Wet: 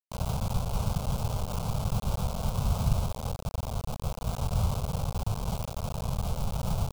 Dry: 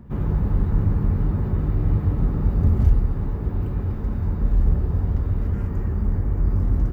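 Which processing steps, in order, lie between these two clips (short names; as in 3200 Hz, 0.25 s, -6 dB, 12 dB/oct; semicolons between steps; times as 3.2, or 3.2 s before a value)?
whisperiser; bit-crush 4-bit; fixed phaser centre 760 Hz, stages 4; gain -7.5 dB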